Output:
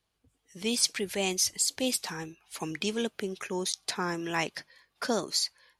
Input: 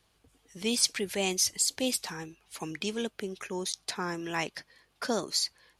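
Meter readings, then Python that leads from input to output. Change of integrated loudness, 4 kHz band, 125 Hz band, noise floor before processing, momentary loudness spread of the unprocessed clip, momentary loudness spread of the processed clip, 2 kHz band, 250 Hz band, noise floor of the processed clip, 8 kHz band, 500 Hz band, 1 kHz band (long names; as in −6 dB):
+0.5 dB, +0.5 dB, +1.5 dB, −70 dBFS, 13 LU, 11 LU, +1.5 dB, +1.0 dB, −79 dBFS, 0.0 dB, +1.0 dB, +1.5 dB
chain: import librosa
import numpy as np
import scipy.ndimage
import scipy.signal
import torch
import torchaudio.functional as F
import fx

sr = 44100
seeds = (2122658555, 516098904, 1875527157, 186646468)

p1 = fx.rider(x, sr, range_db=3, speed_s=0.5)
p2 = x + (p1 * librosa.db_to_amplitude(-2.5))
p3 = fx.noise_reduce_blind(p2, sr, reduce_db=10)
y = p3 * librosa.db_to_amplitude(-4.0)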